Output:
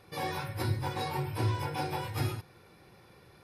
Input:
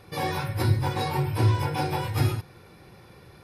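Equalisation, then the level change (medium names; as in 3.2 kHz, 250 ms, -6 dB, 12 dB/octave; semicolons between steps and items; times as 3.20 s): bass shelf 210 Hz -4.5 dB; -5.5 dB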